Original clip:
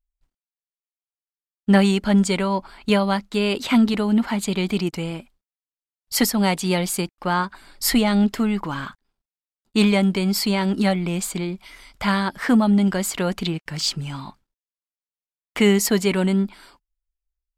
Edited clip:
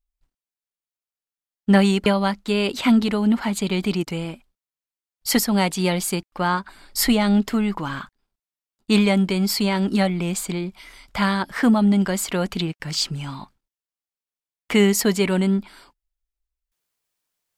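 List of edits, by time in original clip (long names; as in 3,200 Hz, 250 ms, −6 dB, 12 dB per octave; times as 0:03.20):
0:02.06–0:02.92: remove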